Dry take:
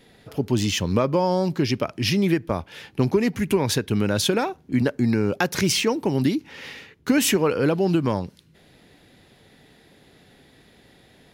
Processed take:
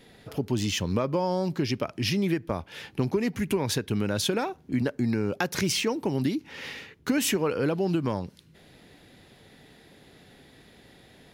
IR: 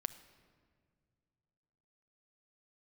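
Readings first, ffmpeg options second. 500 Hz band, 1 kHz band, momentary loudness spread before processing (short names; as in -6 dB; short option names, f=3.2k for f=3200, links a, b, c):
-5.5 dB, -5.5 dB, 10 LU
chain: -af "acompressor=threshold=-32dB:ratio=1.5"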